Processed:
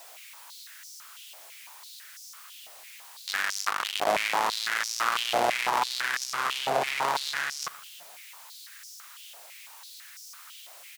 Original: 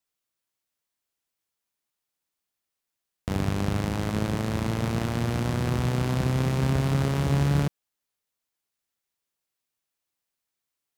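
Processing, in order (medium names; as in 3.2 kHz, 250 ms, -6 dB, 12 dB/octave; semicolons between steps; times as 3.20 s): 3.54–4.07 s: cycle switcher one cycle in 2, muted; power-law waveshaper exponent 0.5; feedback delay 118 ms, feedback 58%, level -23 dB; step-sequenced high-pass 6 Hz 670–5500 Hz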